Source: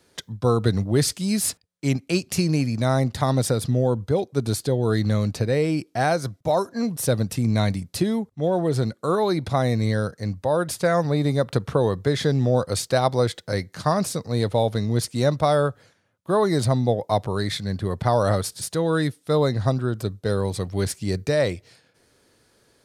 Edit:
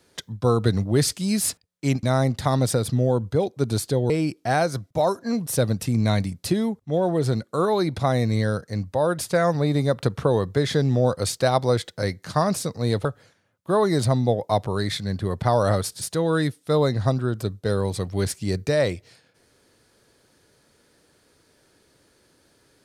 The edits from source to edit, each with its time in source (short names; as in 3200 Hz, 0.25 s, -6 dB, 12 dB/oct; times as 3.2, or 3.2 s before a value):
2.03–2.79 cut
4.86–5.6 cut
14.55–15.65 cut